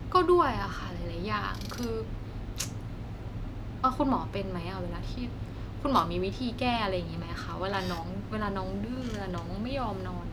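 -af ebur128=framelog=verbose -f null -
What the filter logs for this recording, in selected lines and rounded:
Integrated loudness:
  I:         -31.9 LUFS
  Threshold: -41.9 LUFS
Loudness range:
  LRA:         3.1 LU
  Threshold: -52.5 LUFS
  LRA low:   -34.1 LUFS
  LRA high:  -31.0 LUFS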